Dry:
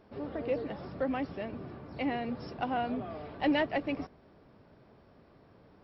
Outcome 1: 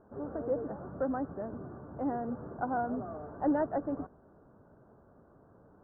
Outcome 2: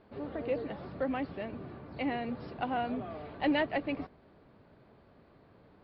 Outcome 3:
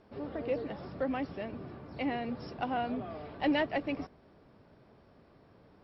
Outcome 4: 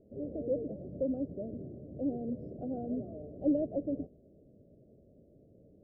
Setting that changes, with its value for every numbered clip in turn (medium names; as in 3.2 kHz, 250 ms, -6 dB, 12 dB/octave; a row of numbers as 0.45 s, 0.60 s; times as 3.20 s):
elliptic low-pass, frequency: 1.5 kHz, 4.5 kHz, 11 kHz, 600 Hz